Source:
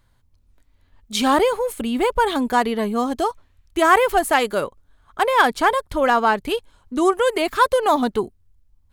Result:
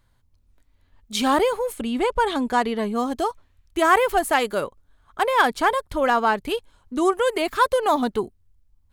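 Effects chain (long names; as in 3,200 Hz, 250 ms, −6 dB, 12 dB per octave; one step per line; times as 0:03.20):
0:01.77–0:02.95: low-pass filter 9,700 Hz 12 dB per octave
level −2.5 dB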